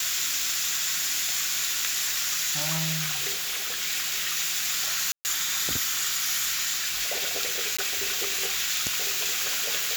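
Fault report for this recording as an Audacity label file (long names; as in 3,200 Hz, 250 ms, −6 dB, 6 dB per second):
3.320000	3.830000	clipping −26.5 dBFS
5.120000	5.250000	drop-out 129 ms
7.770000	7.790000	drop-out 15 ms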